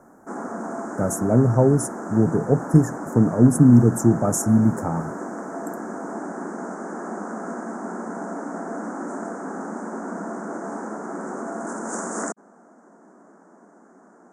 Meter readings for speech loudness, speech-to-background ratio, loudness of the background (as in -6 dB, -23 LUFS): -19.0 LUFS, 13.0 dB, -32.0 LUFS